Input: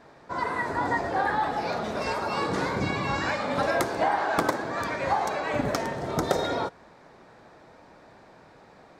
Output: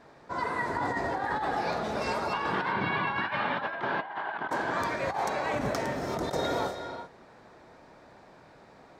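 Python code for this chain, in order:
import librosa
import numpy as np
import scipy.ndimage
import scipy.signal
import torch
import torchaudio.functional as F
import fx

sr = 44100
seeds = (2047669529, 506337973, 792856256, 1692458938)

y = fx.cabinet(x, sr, low_hz=140.0, low_slope=12, high_hz=3500.0, hz=(280.0, 520.0, 960.0, 1600.0, 3100.0), db=(-5, -7, 7, 7, 8), at=(2.33, 4.51))
y = fx.rev_gated(y, sr, seeds[0], gate_ms=410, shape='rising', drr_db=8.0)
y = fx.over_compress(y, sr, threshold_db=-26.0, ratio=-0.5)
y = F.gain(torch.from_numpy(y), -3.5).numpy()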